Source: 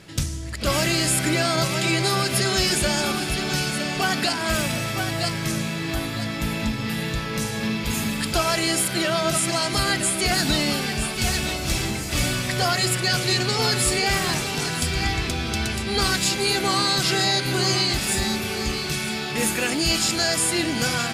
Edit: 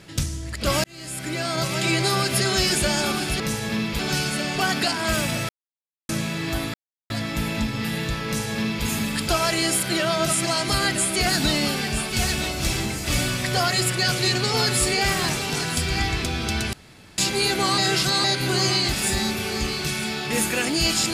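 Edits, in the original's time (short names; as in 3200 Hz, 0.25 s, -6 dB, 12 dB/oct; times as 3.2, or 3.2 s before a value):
0.84–1.9 fade in
4.9–5.5 mute
6.15 insert silence 0.36 s
7.31–7.9 copy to 3.4
15.78–16.23 room tone
16.83–17.29 reverse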